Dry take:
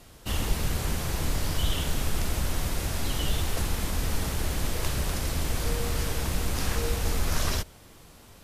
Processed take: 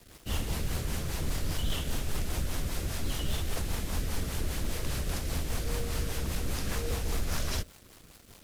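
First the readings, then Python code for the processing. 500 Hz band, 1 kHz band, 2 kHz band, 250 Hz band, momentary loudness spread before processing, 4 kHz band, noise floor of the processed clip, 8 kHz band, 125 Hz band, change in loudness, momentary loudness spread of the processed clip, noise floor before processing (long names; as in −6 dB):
−4.5 dB, −6.0 dB, −5.0 dB, −3.5 dB, 2 LU, −4.5 dB, −55 dBFS, −5.0 dB, −4.0 dB, −4.5 dB, 2 LU, −51 dBFS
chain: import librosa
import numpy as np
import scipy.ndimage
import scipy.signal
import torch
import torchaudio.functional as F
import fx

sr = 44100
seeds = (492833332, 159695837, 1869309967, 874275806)

y = fx.quant_dither(x, sr, seeds[0], bits=8, dither='none')
y = fx.rotary(y, sr, hz=5.0)
y = 10.0 ** (-21.0 / 20.0) * (np.abs((y / 10.0 ** (-21.0 / 20.0) + 3.0) % 4.0 - 2.0) - 1.0)
y = y * 10.0 ** (-2.0 / 20.0)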